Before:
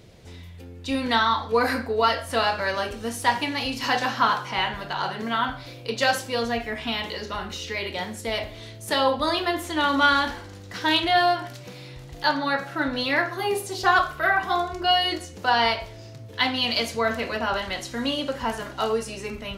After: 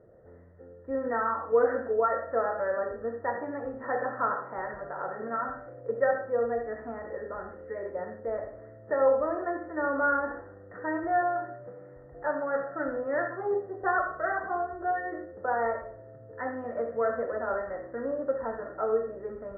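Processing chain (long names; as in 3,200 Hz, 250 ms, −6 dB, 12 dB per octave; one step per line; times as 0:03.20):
Chebyshev low-pass with heavy ripple 1,900 Hz, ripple 9 dB
parametric band 590 Hz +7.5 dB 0.97 octaves
convolution reverb RT60 0.40 s, pre-delay 61 ms, DRR 8 dB
level −5 dB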